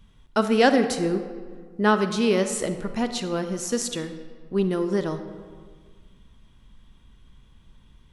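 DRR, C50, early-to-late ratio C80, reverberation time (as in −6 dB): 8.5 dB, 9.5 dB, 11.0 dB, 1.7 s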